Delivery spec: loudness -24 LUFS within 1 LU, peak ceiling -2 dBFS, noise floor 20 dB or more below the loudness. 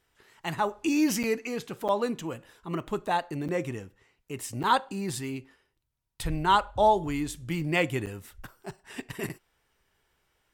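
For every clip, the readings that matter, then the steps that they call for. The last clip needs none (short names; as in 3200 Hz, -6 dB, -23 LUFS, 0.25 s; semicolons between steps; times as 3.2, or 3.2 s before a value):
dropouts 6; longest dropout 7.8 ms; loudness -29.0 LUFS; peak -10.5 dBFS; loudness target -24.0 LUFS
-> interpolate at 1.23/1.88/3.48/4.63/8.06/9.29, 7.8 ms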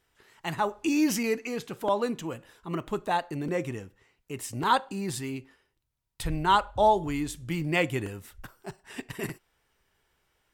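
dropouts 0; loudness -29.0 LUFS; peak -10.5 dBFS; loudness target -24.0 LUFS
-> gain +5 dB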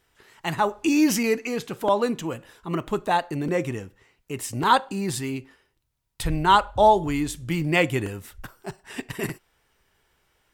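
loudness -24.0 LUFS; peak -5.5 dBFS; noise floor -71 dBFS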